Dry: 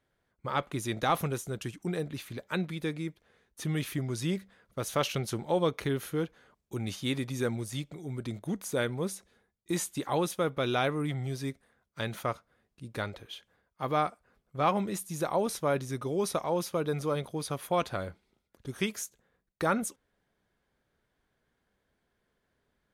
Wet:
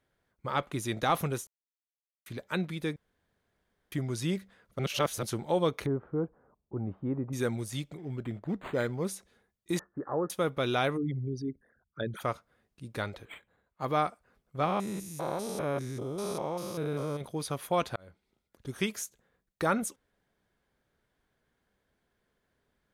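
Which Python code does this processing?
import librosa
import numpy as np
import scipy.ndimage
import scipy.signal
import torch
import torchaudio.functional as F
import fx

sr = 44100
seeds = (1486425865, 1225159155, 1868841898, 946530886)

y = fx.lowpass(x, sr, hz=1100.0, slope=24, at=(5.86, 7.33))
y = fx.resample_linear(y, sr, factor=8, at=(7.97, 9.05))
y = fx.cheby_ripple(y, sr, hz=1800.0, ripple_db=6, at=(9.79, 10.3))
y = fx.envelope_sharpen(y, sr, power=3.0, at=(10.96, 12.2), fade=0.02)
y = fx.resample_linear(y, sr, factor=8, at=(13.25, 13.85))
y = fx.spec_steps(y, sr, hold_ms=200, at=(14.64, 17.2), fade=0.02)
y = fx.edit(y, sr, fx.silence(start_s=1.47, length_s=0.79),
    fx.room_tone_fill(start_s=2.96, length_s=0.96),
    fx.reverse_span(start_s=4.79, length_s=0.44),
    fx.fade_in_span(start_s=17.96, length_s=0.79, curve='qsin'), tone=tone)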